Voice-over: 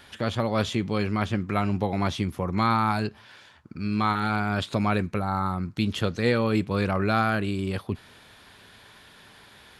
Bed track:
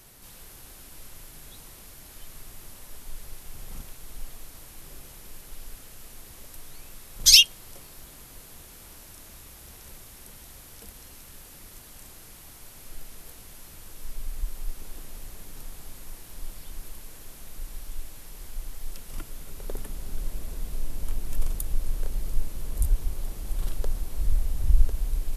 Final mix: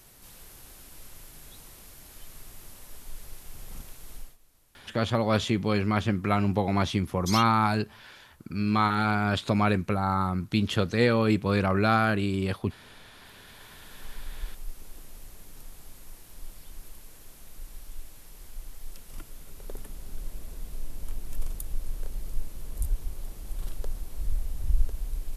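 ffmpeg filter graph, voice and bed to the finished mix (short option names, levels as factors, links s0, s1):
-filter_complex "[0:a]adelay=4750,volume=1.06[s0];[1:a]volume=3.98,afade=t=out:st=4.15:d=0.22:silence=0.141254,afade=t=in:st=13.09:d=0.89:silence=0.199526[s1];[s0][s1]amix=inputs=2:normalize=0"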